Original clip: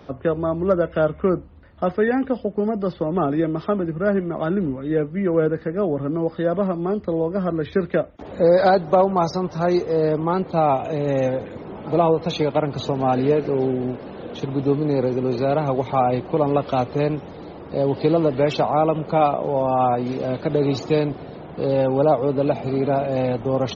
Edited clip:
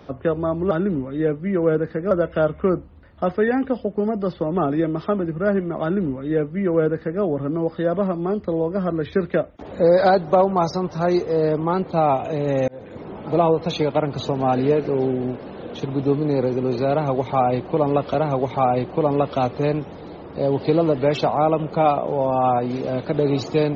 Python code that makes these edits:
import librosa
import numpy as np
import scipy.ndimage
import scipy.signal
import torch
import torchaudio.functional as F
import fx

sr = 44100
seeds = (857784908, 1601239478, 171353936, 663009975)

y = fx.edit(x, sr, fx.duplicate(start_s=4.42, length_s=1.4, to_s=0.71),
    fx.fade_in_span(start_s=11.28, length_s=0.33),
    fx.repeat(start_s=15.5, length_s=1.24, count=2), tone=tone)